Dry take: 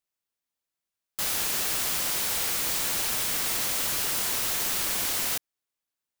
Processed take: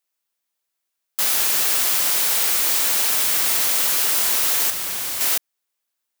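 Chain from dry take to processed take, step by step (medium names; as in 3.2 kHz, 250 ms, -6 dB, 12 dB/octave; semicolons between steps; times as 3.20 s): high-pass 420 Hz 6 dB/octave; treble shelf 11 kHz +4 dB; 4.70–5.21 s: hard clipper -31 dBFS, distortion -13 dB; trim +6.5 dB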